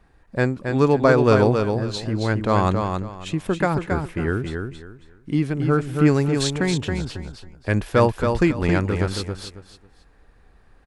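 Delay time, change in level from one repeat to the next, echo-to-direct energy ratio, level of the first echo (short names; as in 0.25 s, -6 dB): 0.273 s, -12.5 dB, -5.0 dB, -5.5 dB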